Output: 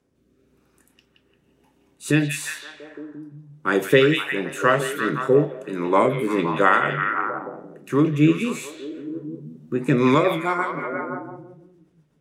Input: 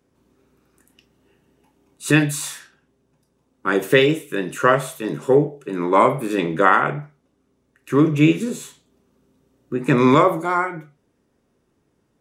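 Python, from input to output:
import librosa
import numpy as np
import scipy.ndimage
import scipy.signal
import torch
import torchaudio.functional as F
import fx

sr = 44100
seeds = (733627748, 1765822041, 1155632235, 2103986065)

y = fx.rotary_switch(x, sr, hz=1.0, then_hz=8.0, switch_at_s=9.69)
y = fx.echo_stepped(y, sr, ms=173, hz=2900.0, octaves=-0.7, feedback_pct=70, wet_db=-1.5)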